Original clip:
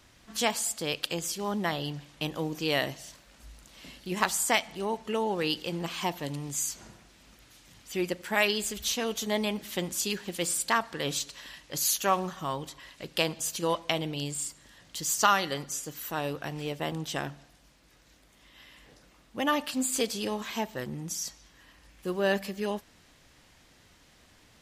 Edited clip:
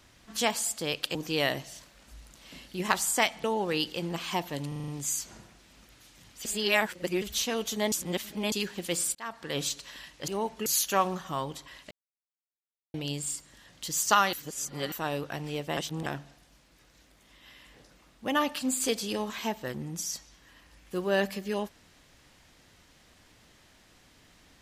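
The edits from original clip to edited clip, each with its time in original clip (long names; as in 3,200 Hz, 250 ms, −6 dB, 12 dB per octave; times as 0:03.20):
0:01.15–0:02.47: remove
0:04.76–0:05.14: move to 0:11.78
0:06.38: stutter 0.04 s, 6 plays
0:07.95–0:08.72: reverse
0:09.42–0:10.02: reverse
0:10.65–0:11.08: fade in linear
0:13.03–0:14.06: silence
0:15.45–0:16.04: reverse
0:16.89–0:17.18: reverse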